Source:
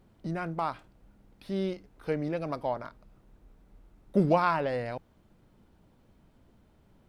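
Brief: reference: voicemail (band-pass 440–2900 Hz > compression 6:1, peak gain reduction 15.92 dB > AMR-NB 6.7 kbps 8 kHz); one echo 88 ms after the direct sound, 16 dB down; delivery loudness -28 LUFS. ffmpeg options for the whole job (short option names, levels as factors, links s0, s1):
-af "highpass=440,lowpass=2900,aecho=1:1:88:0.158,acompressor=threshold=0.0141:ratio=6,volume=6.31" -ar 8000 -c:a libopencore_amrnb -b:a 6700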